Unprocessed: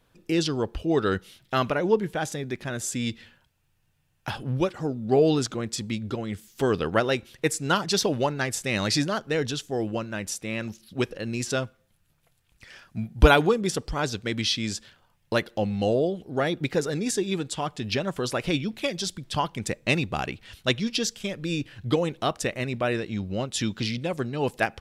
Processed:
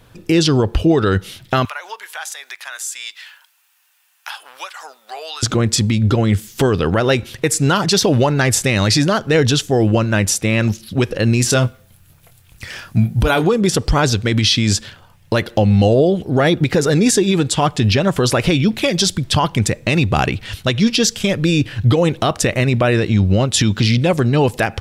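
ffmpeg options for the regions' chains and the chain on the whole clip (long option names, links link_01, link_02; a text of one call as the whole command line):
ffmpeg -i in.wav -filter_complex "[0:a]asettb=1/sr,asplit=3[link_01][link_02][link_03];[link_01]atrim=end=1.654[link_04];[link_02]atrim=start=1.65:end=5.43,asetpts=PTS-STARTPTS,afade=type=in:duration=0.004:curve=qsin,afade=type=out:start_time=3.776:duration=0.004:curve=qsin,highpass=frequency=930:width=0.5412,highpass=frequency=930:width=1.3066,highshelf=frequency=10000:gain=9,acompressor=threshold=-49dB:ratio=2:attack=3.2:release=140:knee=1:detection=peak[link_05];[link_03]atrim=start=5.426[link_06];[link_04][link_05]acrossfade=duration=0.004:curve1=hsin:curve2=qsin[link_07];[link_07][link_06]acrossfade=duration=0.004:curve1=qsin:curve2=hsin,asettb=1/sr,asplit=3[link_08][link_09][link_10];[link_08]atrim=end=11.414[link_11];[link_09]atrim=start=11.41:end=13.44,asetpts=PTS-STARTPTS,afade=type=in:duration=0.004:curve=qsin,afade=type=out:start_time=2.026:duration=0.004:curve=qsin,highshelf=frequency=11000:gain=10,asplit=2[link_12][link_13];[link_13]adelay=24,volume=-10.5dB[link_14];[link_12][link_14]amix=inputs=2:normalize=0,atrim=end_sample=89523[link_15];[link_10]atrim=start=13.436[link_16];[link_11][link_15]acrossfade=duration=0.004:curve1=hsin:curve2=qsin[link_17];[link_17][link_16]acrossfade=duration=0.004:curve1=qsin:curve2=hsin,equalizer=frequency=100:width=1.7:gain=7.5,acompressor=threshold=-23dB:ratio=6,alimiter=level_in=19.5dB:limit=-1dB:release=50:level=0:latency=1,volume=-4dB" out.wav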